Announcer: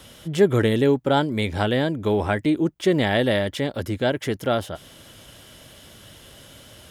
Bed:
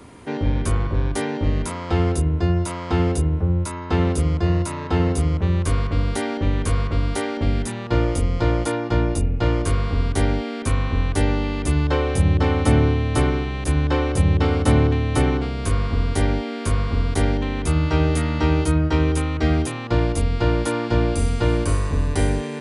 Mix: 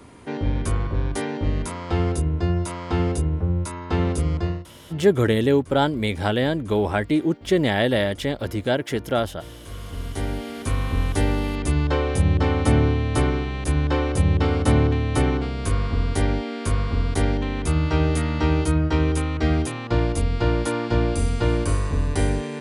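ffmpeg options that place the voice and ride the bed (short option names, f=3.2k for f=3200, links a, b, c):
-filter_complex "[0:a]adelay=4650,volume=0dB[a];[1:a]volume=18dB,afade=t=out:st=4.39:d=0.26:silence=0.105925,afade=t=in:st=9.59:d=1.41:silence=0.0944061[b];[a][b]amix=inputs=2:normalize=0"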